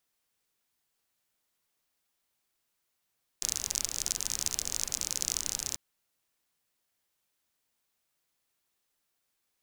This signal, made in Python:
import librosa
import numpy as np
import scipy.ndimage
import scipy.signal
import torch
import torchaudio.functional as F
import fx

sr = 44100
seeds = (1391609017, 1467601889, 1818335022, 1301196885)

y = fx.rain(sr, seeds[0], length_s=2.34, drops_per_s=42.0, hz=6300.0, bed_db=-12.0)